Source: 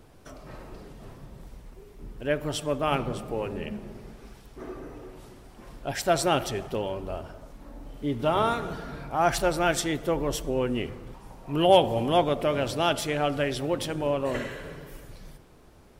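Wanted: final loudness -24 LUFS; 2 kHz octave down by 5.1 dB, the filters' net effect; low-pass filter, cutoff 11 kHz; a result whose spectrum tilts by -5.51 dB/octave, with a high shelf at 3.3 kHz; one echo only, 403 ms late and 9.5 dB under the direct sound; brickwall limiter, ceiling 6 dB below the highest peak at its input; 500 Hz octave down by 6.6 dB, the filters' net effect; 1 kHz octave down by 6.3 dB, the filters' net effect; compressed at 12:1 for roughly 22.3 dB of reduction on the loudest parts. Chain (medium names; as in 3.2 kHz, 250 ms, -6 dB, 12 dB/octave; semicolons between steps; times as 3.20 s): low-pass 11 kHz; peaking EQ 500 Hz -6.5 dB; peaking EQ 1 kHz -5 dB; peaking EQ 2 kHz -3 dB; treble shelf 3.3 kHz -5 dB; compression 12:1, threshold -42 dBFS; peak limiter -38 dBFS; delay 403 ms -9.5 dB; trim +24.5 dB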